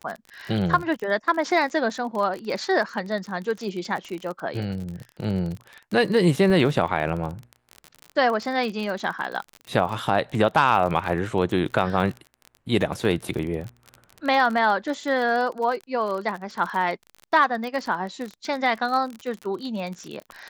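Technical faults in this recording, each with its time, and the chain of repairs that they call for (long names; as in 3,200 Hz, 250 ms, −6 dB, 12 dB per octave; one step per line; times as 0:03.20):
surface crackle 37 per second −29 dBFS
0:06.50: drop-out 2.2 ms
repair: click removal
repair the gap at 0:06.50, 2.2 ms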